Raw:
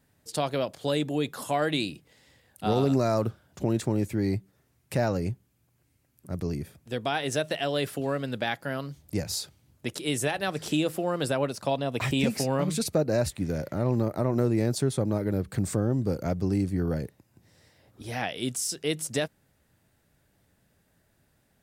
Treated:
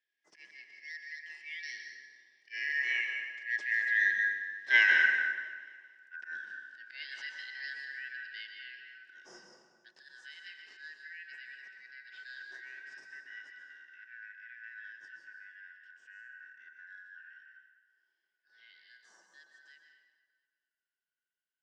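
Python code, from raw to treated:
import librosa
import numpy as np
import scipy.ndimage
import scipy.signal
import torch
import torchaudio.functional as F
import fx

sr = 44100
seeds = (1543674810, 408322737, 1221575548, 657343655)

p1 = fx.band_shuffle(x, sr, order='4123')
p2 = fx.doppler_pass(p1, sr, speed_mps=19, closest_m=6.4, pass_at_s=4.66)
p3 = fx.hpss(p2, sr, part='percussive', gain_db=-9)
p4 = fx.dynamic_eq(p3, sr, hz=660.0, q=1.0, threshold_db=-57.0, ratio=4.0, max_db=6)
p5 = fx.auto_swell(p4, sr, attack_ms=103.0)
p6 = fx.cabinet(p5, sr, low_hz=230.0, low_slope=12, high_hz=6000.0, hz=(380.0, 2800.0, 5200.0), db=(9, 6, 6))
p7 = p6 + fx.echo_feedback(p6, sr, ms=232, feedback_pct=50, wet_db=-20.0, dry=0)
p8 = fx.rev_plate(p7, sr, seeds[0], rt60_s=1.5, hf_ratio=0.6, predelay_ms=110, drr_db=2.5)
y = F.gain(torch.from_numpy(p8), 4.0).numpy()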